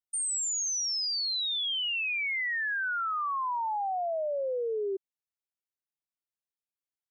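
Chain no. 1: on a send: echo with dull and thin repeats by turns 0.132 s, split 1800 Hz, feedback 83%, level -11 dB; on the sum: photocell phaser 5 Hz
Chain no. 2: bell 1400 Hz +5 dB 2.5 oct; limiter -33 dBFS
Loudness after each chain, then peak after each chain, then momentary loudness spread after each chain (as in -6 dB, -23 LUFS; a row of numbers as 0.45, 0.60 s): -33.0, -34.5 LUFS; -23.5, -33.0 dBFS; 13, 4 LU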